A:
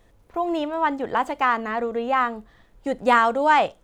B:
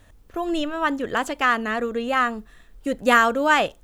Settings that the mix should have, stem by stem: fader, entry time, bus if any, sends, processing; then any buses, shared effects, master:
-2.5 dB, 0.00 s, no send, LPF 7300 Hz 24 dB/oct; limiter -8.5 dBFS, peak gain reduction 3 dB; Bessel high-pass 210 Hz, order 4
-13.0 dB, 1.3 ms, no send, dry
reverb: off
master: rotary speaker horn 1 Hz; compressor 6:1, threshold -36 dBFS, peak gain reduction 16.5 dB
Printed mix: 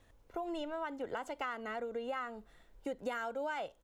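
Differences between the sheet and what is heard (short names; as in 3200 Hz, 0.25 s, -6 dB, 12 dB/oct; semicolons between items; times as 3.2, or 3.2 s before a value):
stem A -2.5 dB -> -9.5 dB; master: missing rotary speaker horn 1 Hz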